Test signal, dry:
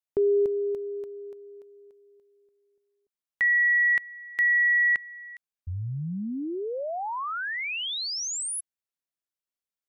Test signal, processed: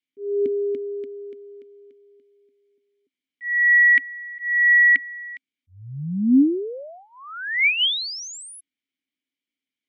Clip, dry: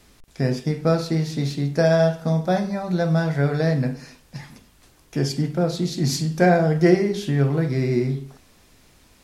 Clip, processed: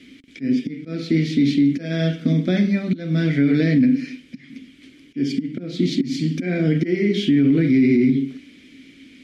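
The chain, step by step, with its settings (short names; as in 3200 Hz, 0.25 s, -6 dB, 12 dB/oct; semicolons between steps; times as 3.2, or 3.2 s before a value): auto swell 0.336 s; vowel filter i; maximiser +30 dB; gain -8 dB; MP3 64 kbps 44100 Hz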